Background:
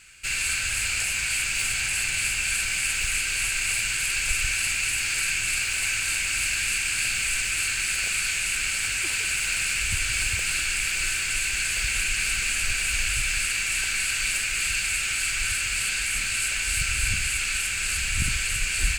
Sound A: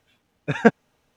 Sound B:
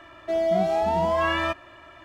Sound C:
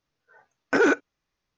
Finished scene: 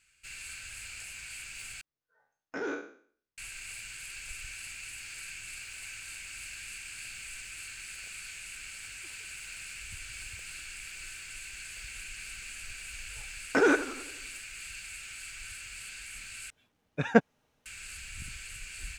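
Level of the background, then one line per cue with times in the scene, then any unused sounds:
background −17.5 dB
0:01.81: overwrite with C −17.5 dB + peak hold with a decay on every bin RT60 0.51 s
0:12.82: mix in C −3.5 dB + feedback echo with a swinging delay time 89 ms, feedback 55%, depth 160 cents, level −13 dB
0:16.50: overwrite with A −6 dB
not used: B

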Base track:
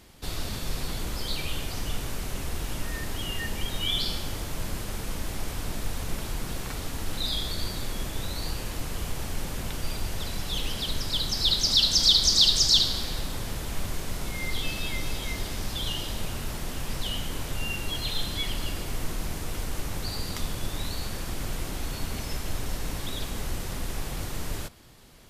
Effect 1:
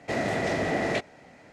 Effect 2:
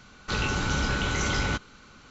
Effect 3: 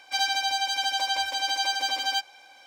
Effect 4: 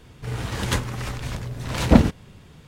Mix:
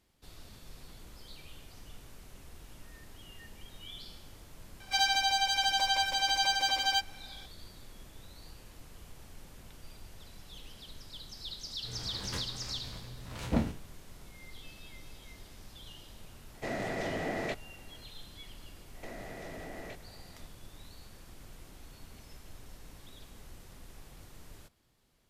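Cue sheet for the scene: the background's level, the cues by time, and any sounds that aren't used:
base track −19 dB
0:04.80: mix in 3 −2 dB
0:11.61: mix in 4 −17 dB + peak hold with a decay on every bin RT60 0.32 s
0:16.54: mix in 1 −8 dB
0:18.95: mix in 1 −7 dB + downward compressor, threshold −35 dBFS
not used: 2

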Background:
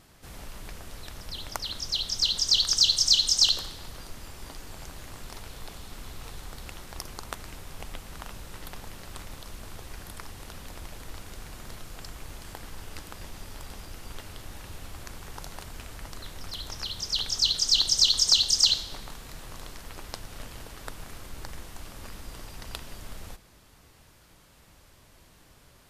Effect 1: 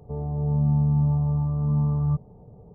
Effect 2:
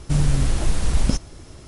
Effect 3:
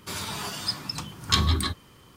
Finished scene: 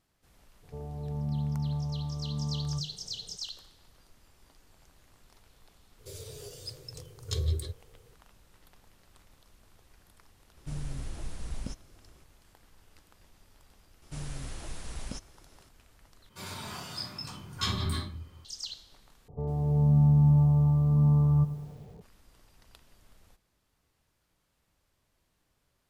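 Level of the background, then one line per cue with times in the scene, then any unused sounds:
background −18.5 dB
0:00.63: mix in 1 −8 dB + mains-hum notches 50/100/150/200/250/300/350 Hz
0:05.99: mix in 3 −4.5 dB + drawn EQ curve 130 Hz 0 dB, 220 Hz −29 dB, 470 Hz +9 dB, 890 Hz −28 dB, 6,600 Hz −6 dB
0:10.57: mix in 2 −18 dB
0:14.02: mix in 2 −13.5 dB + low-shelf EQ 410 Hz −7.5 dB
0:16.29: overwrite with 3 −15.5 dB + rectangular room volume 450 cubic metres, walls furnished, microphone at 5.1 metres
0:19.28: overwrite with 1 −2 dB + feedback echo at a low word length 102 ms, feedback 55%, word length 8 bits, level −14.5 dB

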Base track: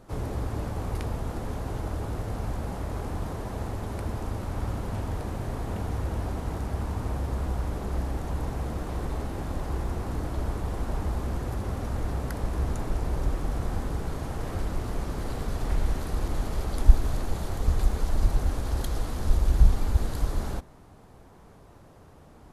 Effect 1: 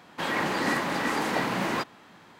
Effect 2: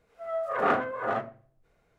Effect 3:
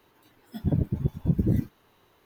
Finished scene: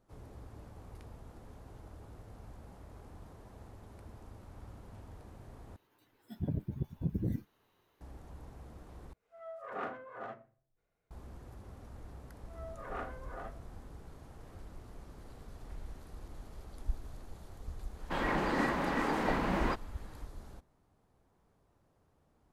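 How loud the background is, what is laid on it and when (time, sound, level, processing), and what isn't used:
base track −19.5 dB
0:05.76: overwrite with 3 −10.5 dB
0:09.13: overwrite with 2 −15 dB
0:12.29: mix in 2 −17 dB
0:17.92: mix in 1 −3 dB, fades 0.10 s + high-shelf EQ 2,300 Hz −11 dB

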